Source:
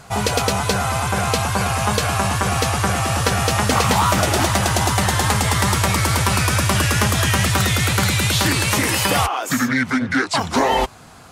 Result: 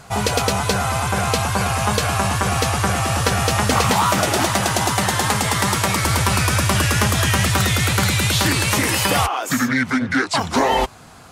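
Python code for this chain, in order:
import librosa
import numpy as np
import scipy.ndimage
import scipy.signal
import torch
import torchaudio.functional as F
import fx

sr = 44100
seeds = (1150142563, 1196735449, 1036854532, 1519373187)

y = fx.highpass(x, sr, hz=120.0, slope=12, at=(3.9, 6.05))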